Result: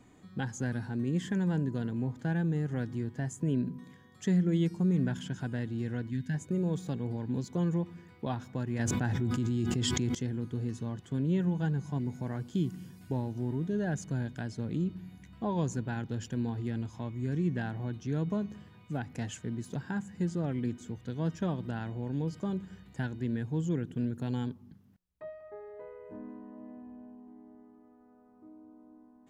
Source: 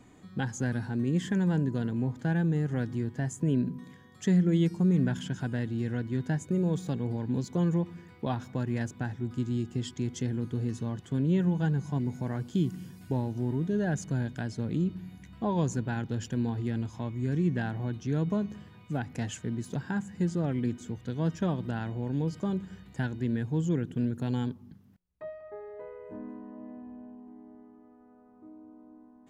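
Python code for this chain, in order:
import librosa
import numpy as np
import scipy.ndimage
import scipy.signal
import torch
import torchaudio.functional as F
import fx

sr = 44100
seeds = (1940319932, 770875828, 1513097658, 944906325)

y = fx.spec_box(x, sr, start_s=6.1, length_s=0.24, low_hz=290.0, high_hz=1500.0, gain_db=-13)
y = fx.env_flatten(y, sr, amount_pct=100, at=(8.79, 10.15))
y = F.gain(torch.from_numpy(y), -3.0).numpy()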